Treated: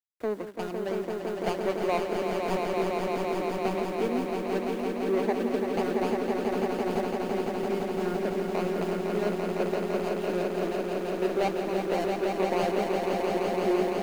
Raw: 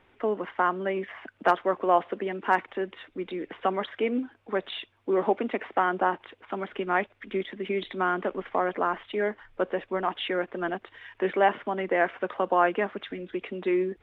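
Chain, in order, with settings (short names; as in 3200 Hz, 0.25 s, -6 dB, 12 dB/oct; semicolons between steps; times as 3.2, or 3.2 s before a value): median filter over 41 samples; bit-crush 9-bit; on a send: swelling echo 0.169 s, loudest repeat 5, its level -5 dB; on the sum: gain -2 dB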